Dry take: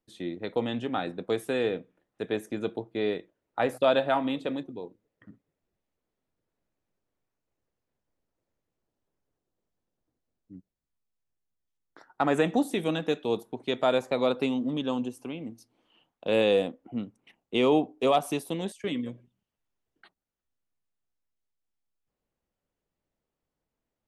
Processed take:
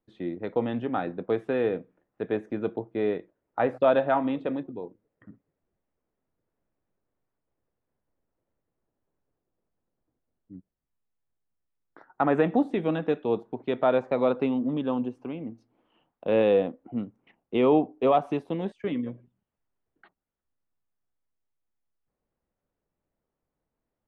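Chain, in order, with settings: low-pass 1.8 kHz 12 dB/octave; trim +2 dB

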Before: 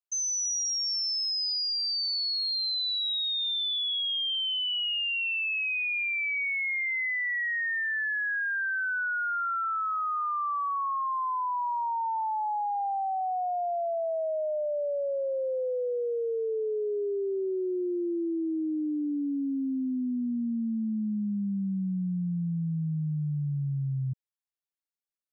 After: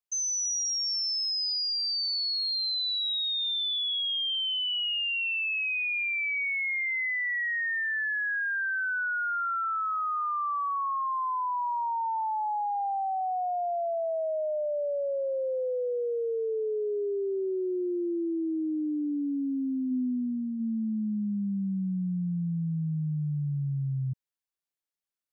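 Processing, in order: 19.90–20.59 s: peaking EQ 210 Hz +3.5 dB -> -4 dB 0.76 oct

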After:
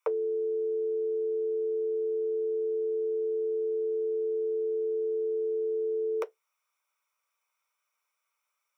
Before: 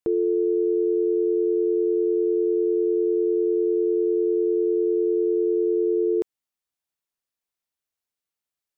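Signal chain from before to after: steep high-pass 510 Hz 48 dB/octave; reverberation, pre-delay 3 ms, DRR 7.5 dB; trim +2 dB

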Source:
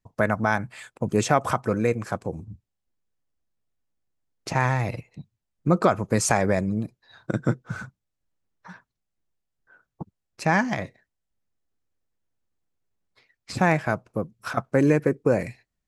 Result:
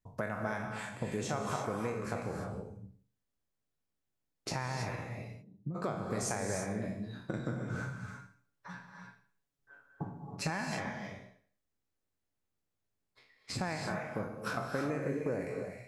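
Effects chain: spectral sustain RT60 0.48 s; compression 4:1, threshold -29 dBFS, peak gain reduction 15 dB; 5.09–5.74 s: band-pass filter 420 Hz -> 130 Hz, Q 1.6; 7.81–10.50 s: comb 7.1 ms; gated-style reverb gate 350 ms rising, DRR 3 dB; trim -5.5 dB

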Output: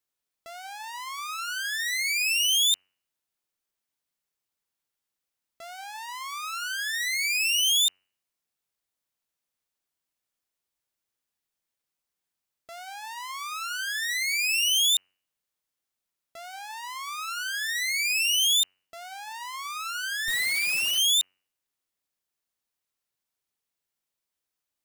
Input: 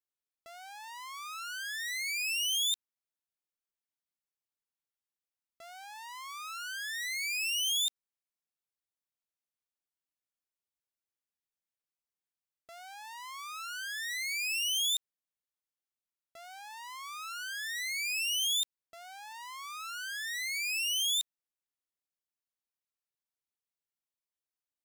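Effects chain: 20.28–20.98 s: Schmitt trigger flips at -40 dBFS; de-hum 93.26 Hz, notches 32; trim +8 dB

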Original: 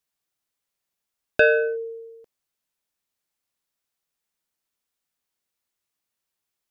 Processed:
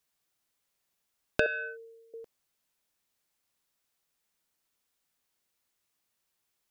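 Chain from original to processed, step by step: 1.46–2.14 s: high-pass 1.5 kHz 12 dB/octave; compression 8:1, threshold -28 dBFS, peak gain reduction 14.5 dB; trim +3 dB

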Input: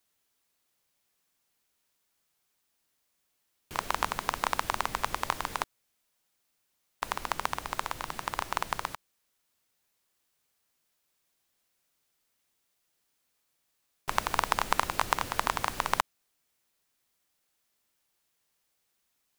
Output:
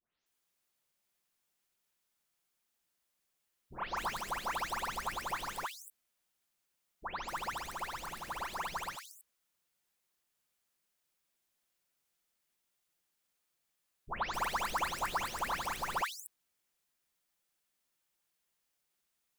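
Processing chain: delay that grows with frequency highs late, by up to 260 ms; trim -5 dB

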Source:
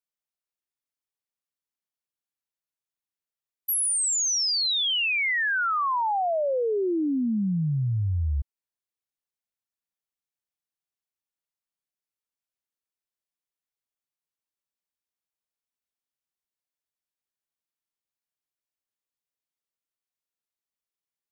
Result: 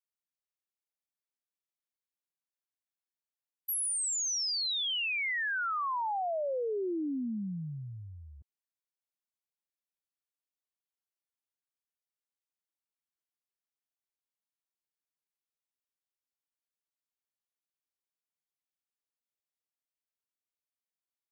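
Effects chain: high-pass 200 Hz 12 dB/octave; trim -7.5 dB

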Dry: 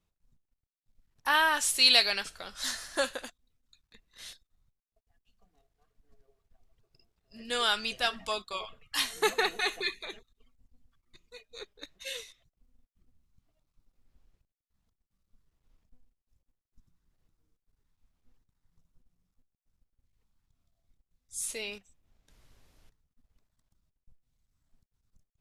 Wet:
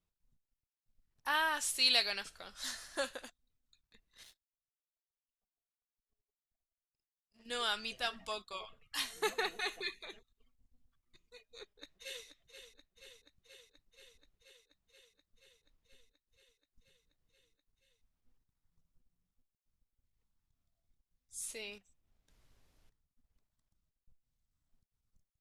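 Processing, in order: 4.23–7.46 s: power-law waveshaper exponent 2; 11.47–12.25 s: echo throw 480 ms, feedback 80%, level -9.5 dB; trim -7.5 dB

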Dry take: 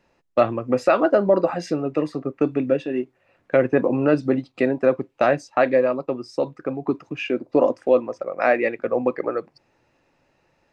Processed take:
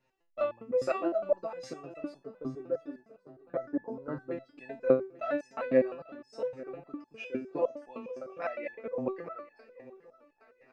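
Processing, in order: 2.24–4.31 s: boxcar filter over 17 samples; shuffle delay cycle 1122 ms, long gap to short 3:1, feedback 32%, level -19 dB; resonator arpeggio 9.8 Hz 130–860 Hz

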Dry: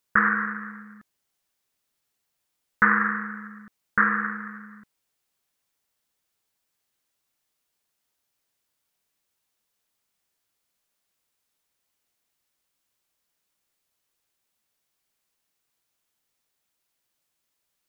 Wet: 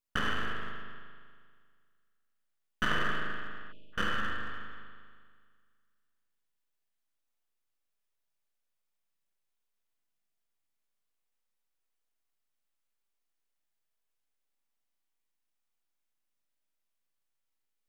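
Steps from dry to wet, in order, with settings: half-wave rectifier; spring tank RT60 1.9 s, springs 39 ms, chirp 50 ms, DRR -0.5 dB; spectral selection erased 3.72–3.93 s, 670–2400 Hz; trim -9 dB

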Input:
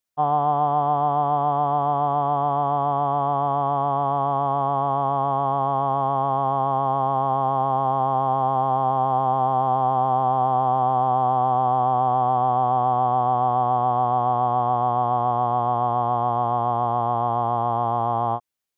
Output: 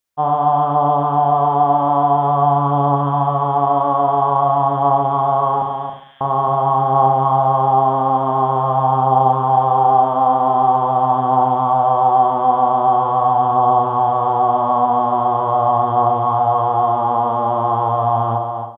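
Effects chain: 5.62–6.21 s: elliptic high-pass 1.7 kHz; delay 274 ms -7 dB; on a send at -3 dB: reverberation RT60 0.60 s, pre-delay 35 ms; on the sum: trim +3.5 dB

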